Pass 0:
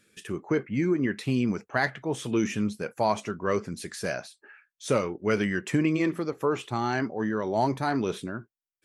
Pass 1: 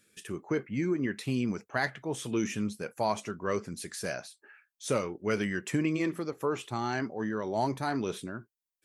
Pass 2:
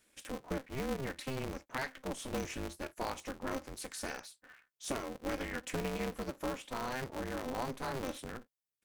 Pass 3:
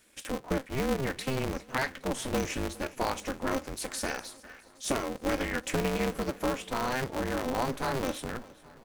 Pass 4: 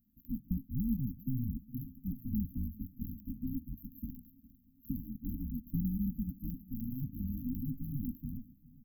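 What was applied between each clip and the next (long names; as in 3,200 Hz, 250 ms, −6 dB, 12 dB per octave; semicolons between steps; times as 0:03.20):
high-shelf EQ 6,300 Hz +7.5 dB; level −4.5 dB
comb filter 2.5 ms, depth 40%; downward compressor 2 to 1, threshold −33 dBFS, peak gain reduction 6 dB; ring modulator with a square carrier 130 Hz; level −4 dB
repeating echo 409 ms, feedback 59%, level −21 dB; level +7.5 dB
linear-phase brick-wall band-stop 280–12,000 Hz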